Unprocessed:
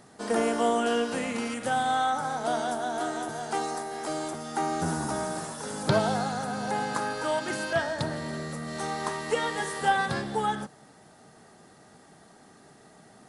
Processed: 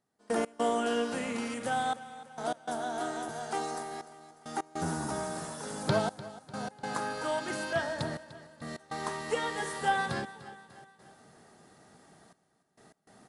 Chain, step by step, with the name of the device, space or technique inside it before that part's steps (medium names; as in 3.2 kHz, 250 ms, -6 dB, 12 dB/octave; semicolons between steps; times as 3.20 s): trance gate with a delay (trance gate "..x.xxxxxxxxx." 101 bpm -24 dB; feedback delay 298 ms, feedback 50%, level -16.5 dB); trim -4 dB